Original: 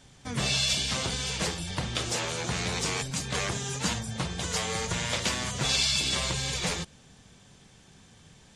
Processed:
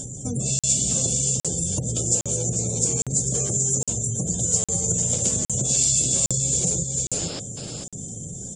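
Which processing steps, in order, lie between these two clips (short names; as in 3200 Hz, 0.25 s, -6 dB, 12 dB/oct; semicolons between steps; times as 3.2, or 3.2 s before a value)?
upward compressor, threshold -42 dBFS; painted sound noise, 7.12–7.4, 250–5400 Hz -36 dBFS; graphic EQ 125/250/500/1000/2000/4000/8000 Hz +9/+4/+7/-10/-11/-6/+8 dB; on a send: echo 0.445 s -7 dB; on the sum: compressor 5:1, threshold -32 dBFS, peak gain reduction 13 dB; spectral gate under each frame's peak -30 dB strong; bell 7200 Hz +14.5 dB 0.32 oct; de-hum 74.17 Hz, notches 10; crackling interface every 0.81 s, samples 2048, zero, from 0.59; gain +7 dB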